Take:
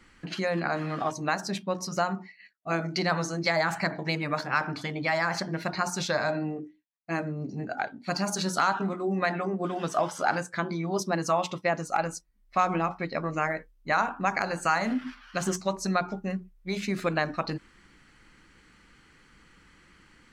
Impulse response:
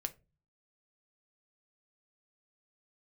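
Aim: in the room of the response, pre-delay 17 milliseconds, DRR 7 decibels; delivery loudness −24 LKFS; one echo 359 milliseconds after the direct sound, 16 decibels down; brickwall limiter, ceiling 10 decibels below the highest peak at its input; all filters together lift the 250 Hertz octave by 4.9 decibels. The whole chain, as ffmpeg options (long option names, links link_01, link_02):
-filter_complex "[0:a]equalizer=frequency=250:width_type=o:gain=7.5,alimiter=limit=-20.5dB:level=0:latency=1,aecho=1:1:359:0.158,asplit=2[link_01][link_02];[1:a]atrim=start_sample=2205,adelay=17[link_03];[link_02][link_03]afir=irnorm=-1:irlink=0,volume=-6dB[link_04];[link_01][link_04]amix=inputs=2:normalize=0,volume=6dB"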